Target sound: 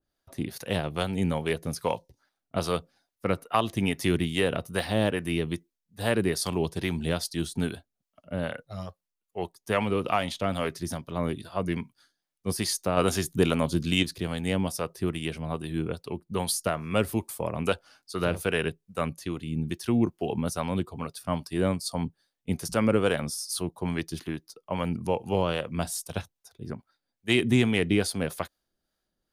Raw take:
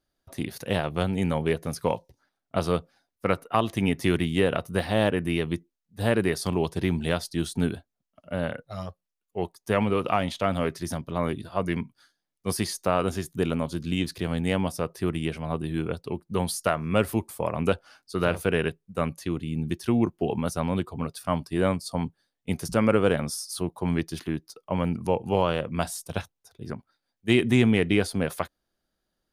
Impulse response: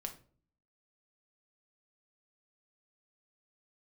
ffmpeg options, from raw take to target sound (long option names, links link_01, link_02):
-filter_complex "[0:a]asettb=1/sr,asplit=3[link_01][link_02][link_03];[link_01]atrim=end=12.974[link_04];[link_02]atrim=start=12.97:end=14.03,asetpts=PTS-STARTPTS,afade=type=in:duration=0.004:curve=qsin,afade=type=out:start_time=1.056:duration=0.004:curve=qsin,acontrast=39[link_05];[link_03]atrim=start=14.026[link_06];[link_04][link_05]acrossfade=duration=0.004:curve1=hsin:curve2=qsin[link_07];[link_07][link_06]acrossfade=duration=0.004:curve1=qsin:curve2=hsin,acrossover=split=500[link_08][link_09];[link_08]aeval=exprs='val(0)*(1-0.5/2+0.5/2*cos(2*PI*2.4*n/s))':channel_layout=same[link_10];[link_09]aeval=exprs='val(0)*(1-0.5/2-0.5/2*cos(2*PI*2.4*n/s))':channel_layout=same[link_11];[link_10][link_11]amix=inputs=2:normalize=0,adynamicequalizer=threshold=0.00794:dfrequency=2800:dqfactor=0.7:tfrequency=2800:tqfactor=0.7:attack=5:release=100:ratio=0.375:range=2.5:mode=boostabove:tftype=highshelf"